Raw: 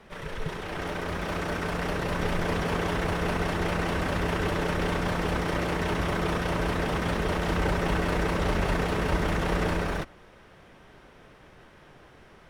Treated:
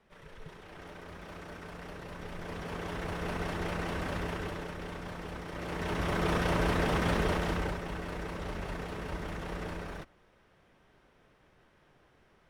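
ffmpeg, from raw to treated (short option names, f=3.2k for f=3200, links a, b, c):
-af "volume=5.5dB,afade=t=in:st=2.29:d=1.15:silence=0.398107,afade=t=out:st=4.16:d=0.57:silence=0.473151,afade=t=in:st=5.52:d=0.87:silence=0.237137,afade=t=out:st=7.2:d=0.62:silence=0.281838"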